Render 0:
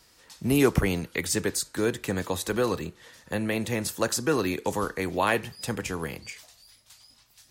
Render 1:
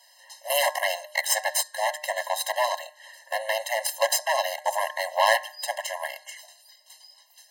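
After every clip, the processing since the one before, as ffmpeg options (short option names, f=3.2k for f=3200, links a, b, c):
-af "aeval=exprs='0.398*(cos(1*acos(clip(val(0)/0.398,-1,1)))-cos(1*PI/2))+0.0708*(cos(8*acos(clip(val(0)/0.398,-1,1)))-cos(8*PI/2))':c=same,bandreject=f=151.4:t=h:w=4,bandreject=f=302.8:t=h:w=4,bandreject=f=454.2:t=h:w=4,bandreject=f=605.6:t=h:w=4,bandreject=f=757:t=h:w=4,bandreject=f=908.4:t=h:w=4,bandreject=f=1.0598k:t=h:w=4,bandreject=f=1.2112k:t=h:w=4,bandreject=f=1.3626k:t=h:w=4,bandreject=f=1.514k:t=h:w=4,bandreject=f=1.6654k:t=h:w=4,bandreject=f=1.8168k:t=h:w=4,bandreject=f=1.9682k:t=h:w=4,afftfilt=real='re*eq(mod(floor(b*sr/1024/540),2),1)':imag='im*eq(mod(floor(b*sr/1024/540),2),1)':win_size=1024:overlap=0.75,volume=6dB"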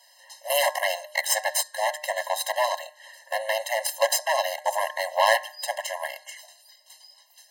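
-af "equalizer=f=440:w=4.1:g=8.5"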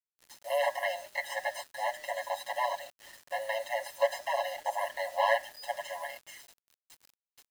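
-filter_complex "[0:a]acrossover=split=3000[a][b];[b]acompressor=threshold=-41dB:ratio=4:attack=1:release=60[c];[a][c]amix=inputs=2:normalize=0,aecho=1:1:7.1:0.92,acrusher=bits=6:mix=0:aa=0.000001,volume=-9dB"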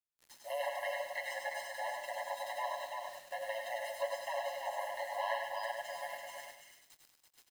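-filter_complex "[0:a]asplit=2[a][b];[b]aecho=0:1:88|148|335:0.335|0.178|0.501[c];[a][c]amix=inputs=2:normalize=0,acompressor=threshold=-36dB:ratio=1.5,asplit=2[d][e];[e]aecho=0:1:101|202|303|404:0.531|0.154|0.0446|0.0129[f];[d][f]amix=inputs=2:normalize=0,volume=-5dB"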